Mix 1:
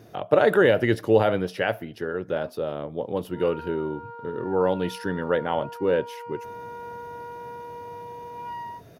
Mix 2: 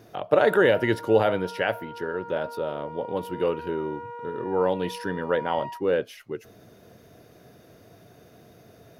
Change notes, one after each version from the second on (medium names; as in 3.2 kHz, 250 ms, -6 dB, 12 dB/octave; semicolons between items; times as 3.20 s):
speech: add bass shelf 260 Hz -4.5 dB; background: entry -3.00 s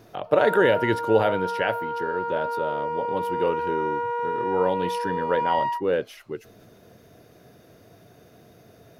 background +11.0 dB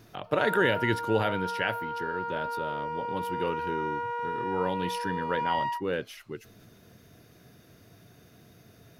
master: add peaking EQ 570 Hz -9 dB 1.6 oct